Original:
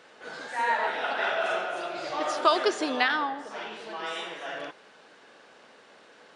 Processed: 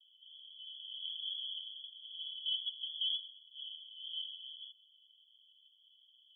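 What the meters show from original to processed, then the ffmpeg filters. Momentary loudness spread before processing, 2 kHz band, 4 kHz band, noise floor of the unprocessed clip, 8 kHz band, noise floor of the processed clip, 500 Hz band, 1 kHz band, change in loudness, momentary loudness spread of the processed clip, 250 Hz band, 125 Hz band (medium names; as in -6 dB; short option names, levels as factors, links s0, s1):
14 LU, under -40 dB, -0.5 dB, -55 dBFS, under -35 dB, -67 dBFS, under -40 dB, under -40 dB, -11.5 dB, 14 LU, under -40 dB, no reading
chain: -af "asuperpass=centerf=3200:order=20:qfactor=7.8,volume=1.78"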